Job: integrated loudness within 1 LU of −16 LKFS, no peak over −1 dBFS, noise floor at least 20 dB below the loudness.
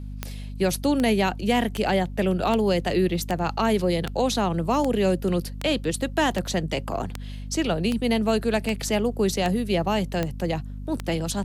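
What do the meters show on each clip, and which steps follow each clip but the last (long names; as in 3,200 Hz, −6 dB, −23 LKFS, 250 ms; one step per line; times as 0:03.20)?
number of clicks 15; mains hum 50 Hz; hum harmonics up to 250 Hz; level of the hum −32 dBFS; integrated loudness −24.5 LKFS; sample peak −9.5 dBFS; target loudness −16.0 LKFS
→ click removal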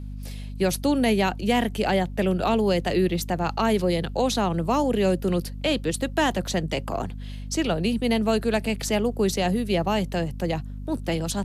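number of clicks 0; mains hum 50 Hz; hum harmonics up to 250 Hz; level of the hum −32 dBFS
→ mains-hum notches 50/100/150/200/250 Hz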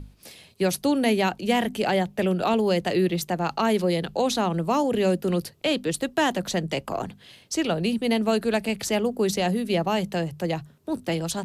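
mains hum none found; integrated loudness −25.0 LKFS; sample peak −11.0 dBFS; target loudness −16.0 LKFS
→ level +9 dB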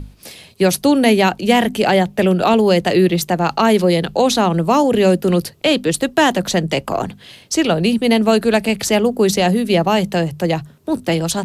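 integrated loudness −16.0 LKFS; sample peak −2.0 dBFS; background noise floor −46 dBFS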